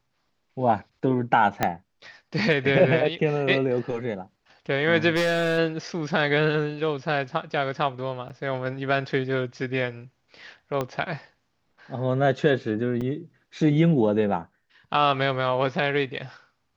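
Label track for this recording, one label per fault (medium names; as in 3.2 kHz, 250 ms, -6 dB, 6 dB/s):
1.630000	1.630000	pop -7 dBFS
5.150000	5.590000	clipped -19.5 dBFS
8.290000	8.300000	dropout 8.4 ms
10.810000	10.810000	pop -14 dBFS
13.010000	13.020000	dropout 5.1 ms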